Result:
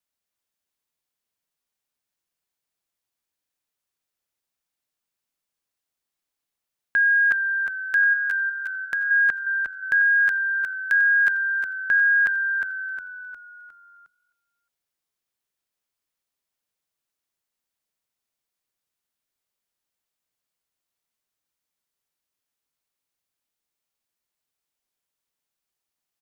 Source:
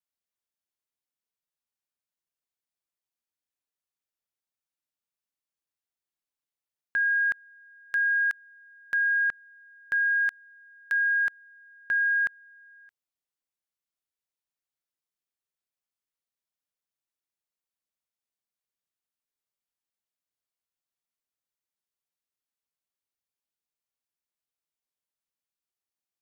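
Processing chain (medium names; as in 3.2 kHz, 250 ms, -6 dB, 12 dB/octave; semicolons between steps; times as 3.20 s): 8.13–9.11 s: compression, threshold -30 dBFS, peak gain reduction 7 dB; frequency-shifting echo 358 ms, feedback 45%, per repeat -46 Hz, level -6 dB; trim +6 dB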